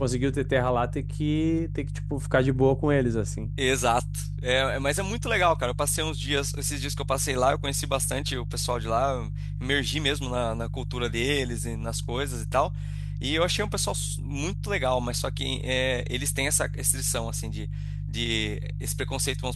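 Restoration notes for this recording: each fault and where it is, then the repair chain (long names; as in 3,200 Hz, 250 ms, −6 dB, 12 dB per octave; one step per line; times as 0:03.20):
mains hum 50 Hz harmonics 3 −32 dBFS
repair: hum removal 50 Hz, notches 3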